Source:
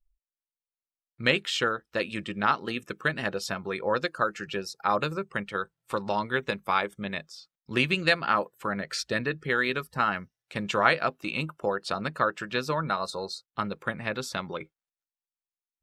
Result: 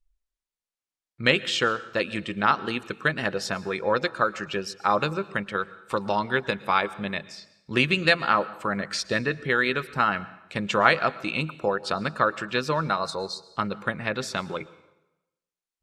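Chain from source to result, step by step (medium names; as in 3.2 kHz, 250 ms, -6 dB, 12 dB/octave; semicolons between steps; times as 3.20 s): low-pass 9.9 kHz 12 dB/octave; plate-style reverb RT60 0.94 s, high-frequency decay 0.85×, pre-delay 100 ms, DRR 18 dB; trim +3 dB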